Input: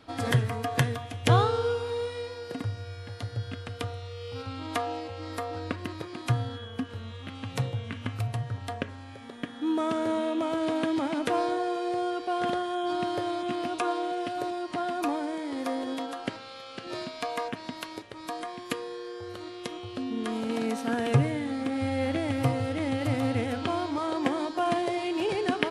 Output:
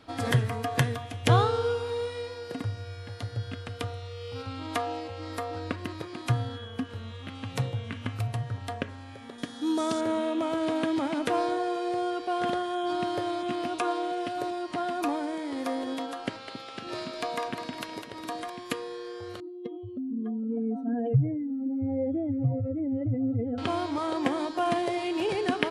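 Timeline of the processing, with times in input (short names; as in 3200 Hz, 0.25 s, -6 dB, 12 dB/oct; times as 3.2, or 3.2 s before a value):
9.38–10.01 resonant high shelf 3500 Hz +9 dB, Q 1.5
16.27–18.5 split-band echo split 400 Hz, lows 0.272 s, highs 0.204 s, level -8 dB
19.4–23.58 spectral contrast raised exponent 2.7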